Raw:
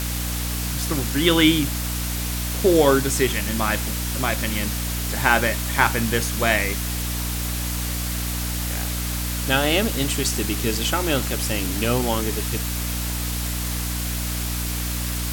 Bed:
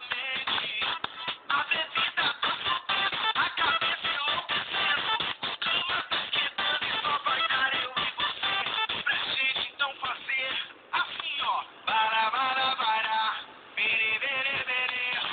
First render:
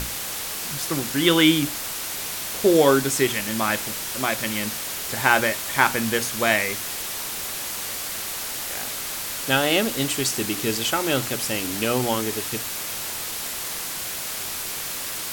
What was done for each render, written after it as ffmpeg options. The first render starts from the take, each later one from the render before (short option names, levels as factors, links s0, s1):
-af "bandreject=f=60:t=h:w=6,bandreject=f=120:t=h:w=6,bandreject=f=180:t=h:w=6,bandreject=f=240:t=h:w=6,bandreject=f=300:t=h:w=6"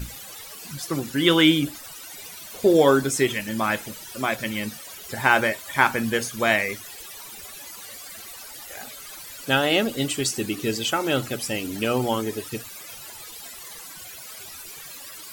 -af "afftdn=nr=16:nf=-31"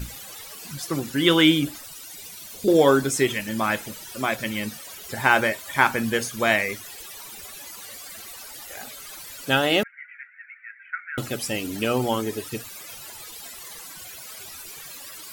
-filter_complex "[0:a]asettb=1/sr,asplit=3[s0][s1][s2];[s0]atrim=end=1.844[s3];[s1]atrim=start=1.84:end=2.68,asetpts=PTS-STARTPTS,afade=t=in:d=0.004:c=qsin,afade=t=out:st=0.836:d=0.004:c=qsin,acrossover=split=330|3000[s4][s5][s6];[s5]acompressor=threshold=0.00316:ratio=6:attack=3.2:release=140:knee=2.83:detection=peak[s7];[s4][s7][s6]amix=inputs=3:normalize=0[s8];[s2]atrim=start=2.676[s9];[s3][s8]acrossfade=d=0.004:c1=hsin:c2=qsin[s10];[s10][s9]acrossfade=d=0.004:c1=qsin:c2=hsin,asettb=1/sr,asplit=3[s11][s12][s13];[s11]atrim=end=9.834[s14];[s12]atrim=start=9.83:end=11.18,asetpts=PTS-STARTPTS,afade=t=in:d=0.004:c=qsin,afade=t=out:st=1.346:d=0.004:c=qsin,asuperpass=centerf=1800:order=12:qfactor=2[s15];[s13]atrim=start=11.176[s16];[s14][s15]acrossfade=d=0.004:c1=hsin:c2=qsin[s17];[s17][s16]acrossfade=d=0.004:c1=qsin:c2=hsin"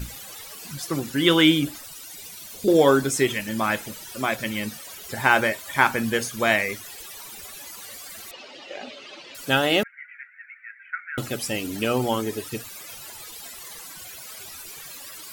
-filter_complex "[0:a]asettb=1/sr,asplit=3[s0][s1][s2];[s0]atrim=end=8.314[s3];[s1]atrim=start=8.31:end=9.35,asetpts=PTS-STARTPTS,afade=t=in:d=0.004:c=qsin,afade=t=out:st=1.036:d=0.004:c=qsin,highpass=190,equalizer=f=250:t=q:w=4:g=9,equalizer=f=360:t=q:w=4:g=9,equalizer=f=560:t=q:w=4:g=10,equalizer=f=1500:t=q:w=4:g=-4,equalizer=f=2800:t=q:w=4:g=8,lowpass=f=4800:w=0.5412,lowpass=f=4800:w=1.3066[s4];[s2]atrim=start=9.346[s5];[s3][s4]acrossfade=d=0.004:c1=hsin:c2=qsin[s6];[s6][s5]acrossfade=d=0.004:c1=qsin:c2=hsin"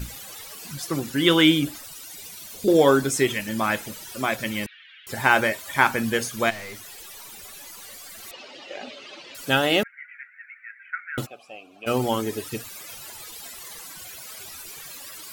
-filter_complex "[0:a]asettb=1/sr,asplit=3[s0][s1][s2];[s0]atrim=end=4.664[s3];[s1]atrim=start=4.66:end=5.07,asetpts=PTS-STARTPTS,afade=t=in:d=0.004:c=qsin,afade=t=out:st=0.406:d=0.004:c=qsin,asuperpass=centerf=2300:order=8:qfactor=1.2[s4];[s2]atrim=start=5.066[s5];[s3][s4]acrossfade=d=0.004:c1=hsin:c2=qsin[s6];[s6][s5]acrossfade=d=0.004:c1=qsin:c2=hsin,asplit=3[s7][s8][s9];[s7]afade=t=out:st=6.49:d=0.02[s10];[s8]aeval=exprs='(tanh(56.2*val(0)+0.2)-tanh(0.2))/56.2':c=same,afade=t=in:st=6.49:d=0.02,afade=t=out:st=8.22:d=0.02[s11];[s9]afade=t=in:st=8.22:d=0.02[s12];[s10][s11][s12]amix=inputs=3:normalize=0,asplit=3[s13][s14][s15];[s13]afade=t=out:st=11.25:d=0.02[s16];[s14]asplit=3[s17][s18][s19];[s17]bandpass=f=730:t=q:w=8,volume=1[s20];[s18]bandpass=f=1090:t=q:w=8,volume=0.501[s21];[s19]bandpass=f=2440:t=q:w=8,volume=0.355[s22];[s20][s21][s22]amix=inputs=3:normalize=0,afade=t=in:st=11.25:d=0.02,afade=t=out:st=11.86:d=0.02[s23];[s15]afade=t=in:st=11.86:d=0.02[s24];[s16][s23][s24]amix=inputs=3:normalize=0"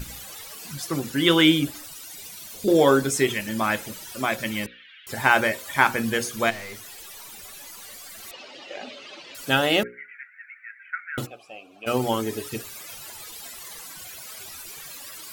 -af "bandreject=f=60:t=h:w=6,bandreject=f=120:t=h:w=6,bandreject=f=180:t=h:w=6,bandreject=f=240:t=h:w=6,bandreject=f=300:t=h:w=6,bandreject=f=360:t=h:w=6,bandreject=f=420:t=h:w=6,bandreject=f=480:t=h:w=6,bandreject=f=540:t=h:w=6"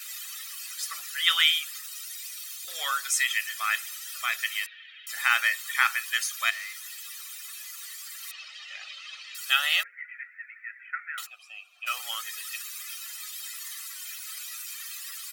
-af "highpass=f=1400:w=0.5412,highpass=f=1400:w=1.3066,aecho=1:1:1.6:0.56"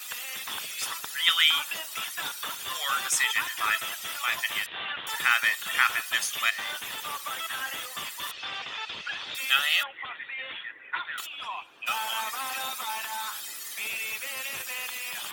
-filter_complex "[1:a]volume=0.398[s0];[0:a][s0]amix=inputs=2:normalize=0"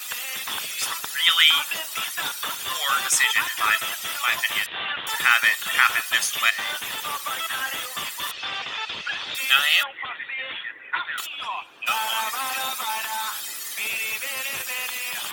-af "volume=1.88,alimiter=limit=0.708:level=0:latency=1"